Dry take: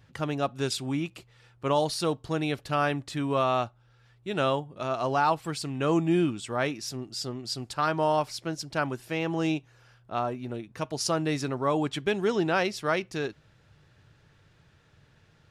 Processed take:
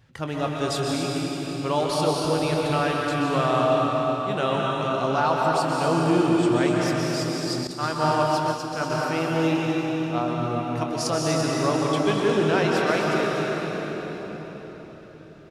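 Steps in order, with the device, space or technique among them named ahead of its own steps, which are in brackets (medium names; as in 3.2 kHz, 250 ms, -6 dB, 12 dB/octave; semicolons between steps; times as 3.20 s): cave (delay 244 ms -10.5 dB; reverberation RT60 4.7 s, pre-delay 117 ms, DRR -2.5 dB); 7.67–8.90 s: expander -21 dBFS; doubling 25 ms -12 dB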